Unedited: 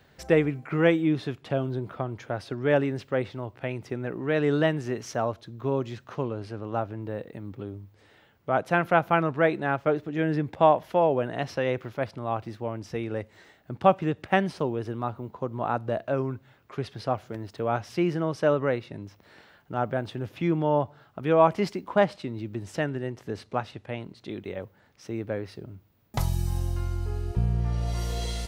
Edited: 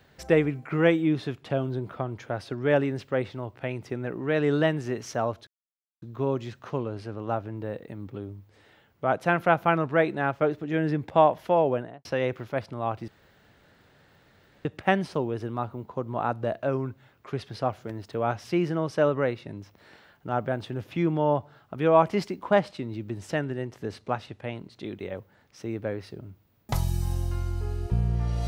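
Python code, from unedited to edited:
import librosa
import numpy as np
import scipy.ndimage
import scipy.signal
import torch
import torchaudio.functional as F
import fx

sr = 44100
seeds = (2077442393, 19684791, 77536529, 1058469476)

y = fx.studio_fade_out(x, sr, start_s=11.15, length_s=0.35)
y = fx.edit(y, sr, fx.insert_silence(at_s=5.47, length_s=0.55),
    fx.room_tone_fill(start_s=12.53, length_s=1.57), tone=tone)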